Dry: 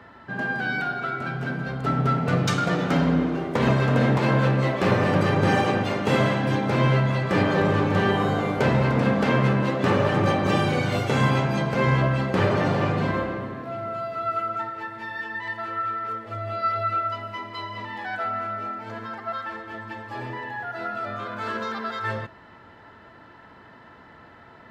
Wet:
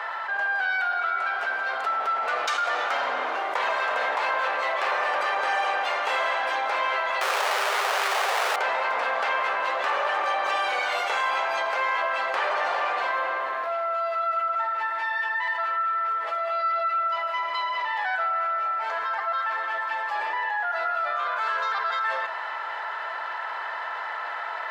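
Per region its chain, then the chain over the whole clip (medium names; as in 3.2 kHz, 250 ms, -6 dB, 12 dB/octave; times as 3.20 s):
7.21–8.56 s: resonant low shelf 300 Hz -9.5 dB, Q 3 + Schmitt trigger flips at -37.5 dBFS + loudspeaker Doppler distortion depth 0.89 ms
whole clip: high-pass 730 Hz 24 dB/octave; treble shelf 4.1 kHz -9 dB; level flattener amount 70%; trim -1.5 dB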